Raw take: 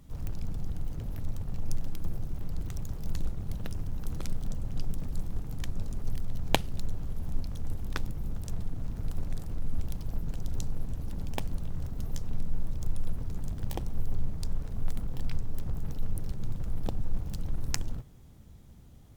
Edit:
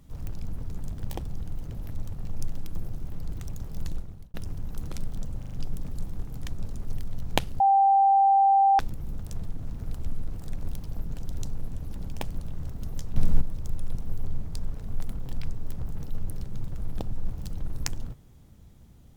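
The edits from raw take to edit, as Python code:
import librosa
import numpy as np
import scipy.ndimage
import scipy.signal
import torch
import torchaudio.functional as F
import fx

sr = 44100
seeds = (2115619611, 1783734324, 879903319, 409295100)

y = fx.edit(x, sr, fx.fade_out_span(start_s=3.17, length_s=0.46),
    fx.stutter(start_s=4.68, slice_s=0.04, count=4),
    fx.bleep(start_s=6.77, length_s=1.19, hz=786.0, db=-16.0),
    fx.reverse_span(start_s=9.15, length_s=0.73),
    fx.clip_gain(start_s=12.33, length_s=0.25, db=9.5),
    fx.move(start_s=13.12, length_s=0.71, to_s=0.52), tone=tone)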